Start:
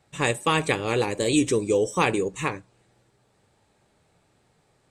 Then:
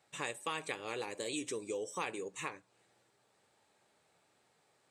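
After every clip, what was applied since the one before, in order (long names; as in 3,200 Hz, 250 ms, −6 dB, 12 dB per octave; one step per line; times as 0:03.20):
high-pass filter 550 Hz 6 dB per octave
downward compressor 2 to 1, threshold −39 dBFS, peak gain reduction 11.5 dB
level −4 dB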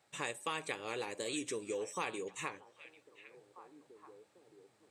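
echo through a band-pass that steps 794 ms, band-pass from 2,500 Hz, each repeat −1.4 octaves, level −12 dB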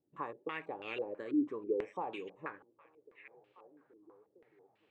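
dynamic equaliser 290 Hz, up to +6 dB, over −54 dBFS, Q 1.2
tape wow and flutter 22 cents
low-pass on a step sequencer 6.1 Hz 310–2,800 Hz
level −6.5 dB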